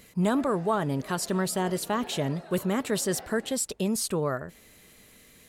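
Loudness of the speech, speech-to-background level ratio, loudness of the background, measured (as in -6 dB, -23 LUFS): -28.5 LUFS, 17.5 dB, -46.0 LUFS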